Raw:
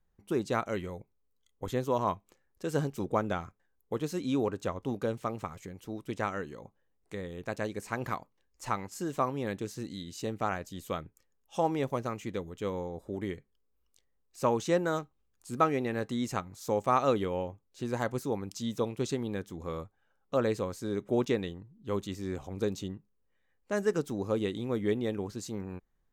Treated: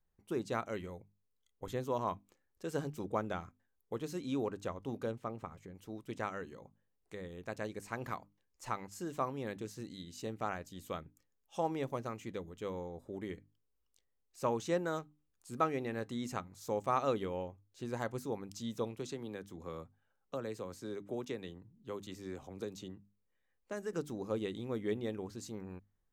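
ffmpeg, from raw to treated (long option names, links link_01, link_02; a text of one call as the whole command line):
ffmpeg -i in.wav -filter_complex "[0:a]asettb=1/sr,asplit=3[link_01][link_02][link_03];[link_01]atrim=end=5.114[link_04];[link_02]atrim=start=5.11:end=5.75,asetpts=PTS-STARTPTS,afade=type=in:duration=0.004:curve=qsin,afade=type=out:start_time=0.636:duration=0.004:curve=qsin,highshelf=frequency=2500:gain=-9[link_05];[link_03]atrim=start=5.746[link_06];[link_04][link_05]acrossfade=duration=0.004:curve1=hsin:curve2=qsin[link_07];[link_07][link_06]acrossfade=duration=0.004:curve1=qsin:curve2=hsin,asettb=1/sr,asplit=3[link_08][link_09][link_10];[link_08]atrim=end=18.964[link_11];[link_09]atrim=start=18.96:end=23.93,asetpts=PTS-STARTPTS,afade=type=in:duration=0.004:curve=qsin,afade=type=out:start_time=4.966:duration=0.004:curve=qsin,acrossover=split=100|290|7200[link_12][link_13][link_14][link_15];[link_12]acompressor=threshold=-56dB:ratio=3[link_16];[link_13]acompressor=threshold=-41dB:ratio=3[link_17];[link_14]acompressor=threshold=-34dB:ratio=3[link_18];[link_15]acompressor=threshold=-54dB:ratio=3[link_19];[link_16][link_17][link_18][link_19]amix=inputs=4:normalize=0[link_20];[link_10]atrim=start=23.926[link_21];[link_11][link_20]acrossfade=duration=0.004:curve1=hsin:curve2=qsin[link_22];[link_22][link_21]acrossfade=duration=0.004:curve1=qsin:curve2=hsin,bandreject=frequency=50:width_type=h:width=6,bandreject=frequency=100:width_type=h:width=6,bandreject=frequency=150:width_type=h:width=6,bandreject=frequency=200:width_type=h:width=6,bandreject=frequency=250:width_type=h:width=6,bandreject=frequency=300:width_type=h:width=6,volume=-6dB" out.wav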